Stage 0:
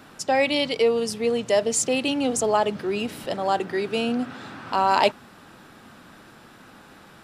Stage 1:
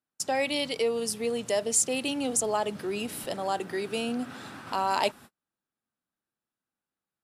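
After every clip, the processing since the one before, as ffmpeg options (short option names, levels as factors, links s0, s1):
-filter_complex "[0:a]agate=range=0.00794:threshold=0.0112:ratio=16:detection=peak,equalizer=f=11000:w=0.73:g=12,asplit=2[s0][s1];[s1]acompressor=threshold=0.0355:ratio=6,volume=0.891[s2];[s0][s2]amix=inputs=2:normalize=0,volume=0.355"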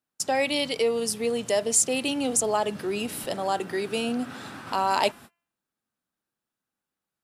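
-af "bandreject=f=341.7:t=h:w=4,bandreject=f=683.4:t=h:w=4,bandreject=f=1025.1:t=h:w=4,bandreject=f=1366.8:t=h:w=4,bandreject=f=1708.5:t=h:w=4,bandreject=f=2050.2:t=h:w=4,bandreject=f=2391.9:t=h:w=4,bandreject=f=2733.6:t=h:w=4,bandreject=f=3075.3:t=h:w=4,volume=1.41"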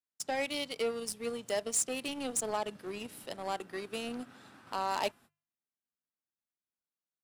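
-af "asoftclip=type=tanh:threshold=0.251,aeval=exprs='0.251*(cos(1*acos(clip(val(0)/0.251,-1,1)))-cos(1*PI/2))+0.0141*(cos(5*acos(clip(val(0)/0.251,-1,1)))-cos(5*PI/2))+0.0316*(cos(7*acos(clip(val(0)/0.251,-1,1)))-cos(7*PI/2))':c=same,bandreject=f=50:t=h:w=6,bandreject=f=100:t=h:w=6,bandreject=f=150:t=h:w=6,volume=0.376"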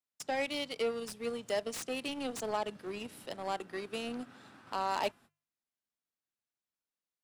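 -filter_complex "[0:a]acrossover=split=110|2800[s0][s1][s2];[s2]aeval=exprs='0.0237*(abs(mod(val(0)/0.0237+3,4)-2)-1)':c=same[s3];[s0][s1][s3]amix=inputs=3:normalize=0,highshelf=f=11000:g=-9"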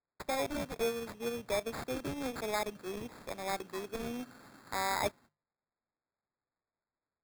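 -af "acrusher=samples=15:mix=1:aa=0.000001"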